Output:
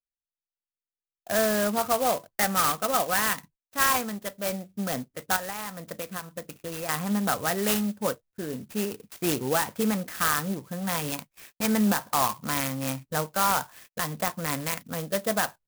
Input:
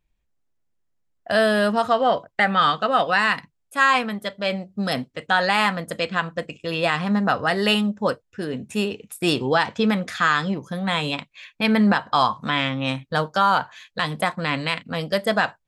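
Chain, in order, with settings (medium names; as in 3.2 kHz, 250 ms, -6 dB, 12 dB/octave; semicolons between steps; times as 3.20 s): gate -45 dBFS, range -28 dB; 5.36–6.89 s: compression 6:1, threshold -26 dBFS, peak gain reduction 10.5 dB; sampling jitter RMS 0.082 ms; trim -5.5 dB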